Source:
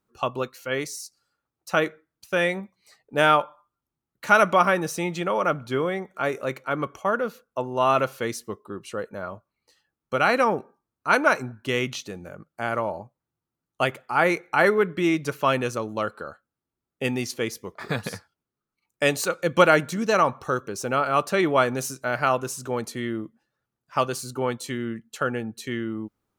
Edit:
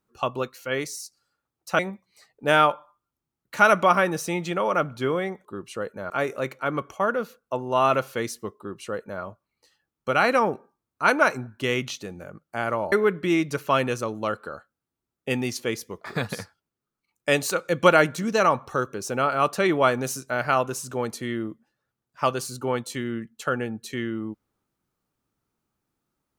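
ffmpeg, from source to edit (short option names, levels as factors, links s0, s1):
-filter_complex "[0:a]asplit=5[s0][s1][s2][s3][s4];[s0]atrim=end=1.792[s5];[s1]atrim=start=2.488:end=6.152[s6];[s2]atrim=start=8.618:end=9.272[s7];[s3]atrim=start=6.148:end=12.972[s8];[s4]atrim=start=14.658[s9];[s5][s6]acrossfade=d=0.004:c1=hsin:c2=hsin[s10];[s10][s7]acrossfade=d=0.004:c1=hsin:c2=hsin[s11];[s11][s8]acrossfade=d=0.004:c1=hsin:c2=hsin[s12];[s12][s9]acrossfade=d=0.004:c1=hsin:c2=hsin"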